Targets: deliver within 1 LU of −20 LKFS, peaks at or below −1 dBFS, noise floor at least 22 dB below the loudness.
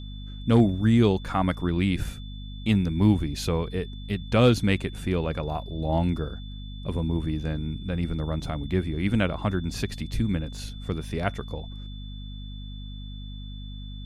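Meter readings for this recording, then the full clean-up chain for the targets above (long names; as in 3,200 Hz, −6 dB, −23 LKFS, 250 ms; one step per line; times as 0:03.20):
mains hum 50 Hz; hum harmonics up to 250 Hz; level of the hum −35 dBFS; interfering tone 3,500 Hz; level of the tone −47 dBFS; integrated loudness −26.5 LKFS; sample peak −8.0 dBFS; target loudness −20.0 LKFS
→ hum removal 50 Hz, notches 5
notch filter 3,500 Hz, Q 30
level +6.5 dB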